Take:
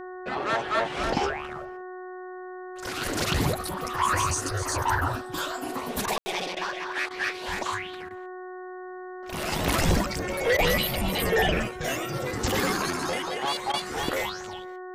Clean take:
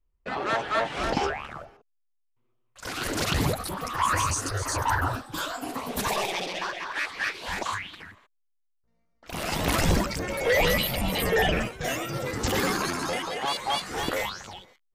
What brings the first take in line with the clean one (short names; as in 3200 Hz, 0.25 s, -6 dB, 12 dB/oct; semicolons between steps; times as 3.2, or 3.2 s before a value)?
de-hum 367.4 Hz, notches 5; room tone fill 6.18–6.26; interpolate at 6.06/6.55/7.09/8.09/10.57/13.72, 15 ms